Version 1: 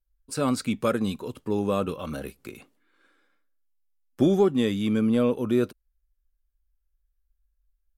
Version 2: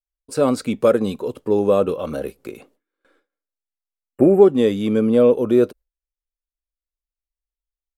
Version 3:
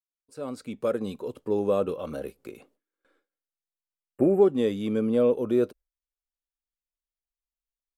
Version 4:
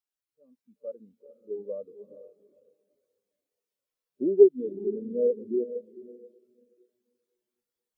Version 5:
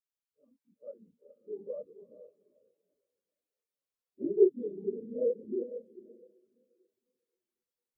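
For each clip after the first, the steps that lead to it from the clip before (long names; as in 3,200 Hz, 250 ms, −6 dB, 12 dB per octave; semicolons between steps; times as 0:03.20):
noise gate with hold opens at −52 dBFS; time-frequency box erased 0:04.06–0:04.42, 2,900–7,300 Hz; parametric band 500 Hz +11 dB 1.4 octaves; level +1 dB
fade in at the beginning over 1.33 s; level −8 dB
bit-depth reduction 6 bits, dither triangular; feedback delay with all-pass diffusion 462 ms, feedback 51%, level −5 dB; every bin expanded away from the loudest bin 2.5 to 1; level +3 dB
random phases in long frames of 50 ms; level −6.5 dB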